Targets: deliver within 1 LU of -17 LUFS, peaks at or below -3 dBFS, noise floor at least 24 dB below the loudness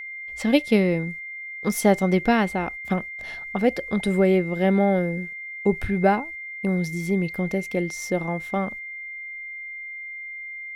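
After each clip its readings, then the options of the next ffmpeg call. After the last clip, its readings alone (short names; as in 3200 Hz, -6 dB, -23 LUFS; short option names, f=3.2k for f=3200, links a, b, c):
steady tone 2100 Hz; tone level -33 dBFS; loudness -24.5 LUFS; peak -4.5 dBFS; loudness target -17.0 LUFS
-> -af "bandreject=f=2.1k:w=30"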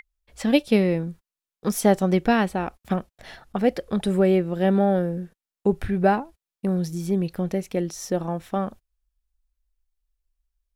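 steady tone none; loudness -24.0 LUFS; peak -5.0 dBFS; loudness target -17.0 LUFS
-> -af "volume=7dB,alimiter=limit=-3dB:level=0:latency=1"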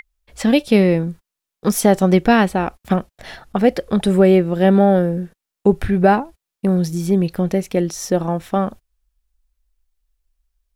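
loudness -17.5 LUFS; peak -3.0 dBFS; noise floor -84 dBFS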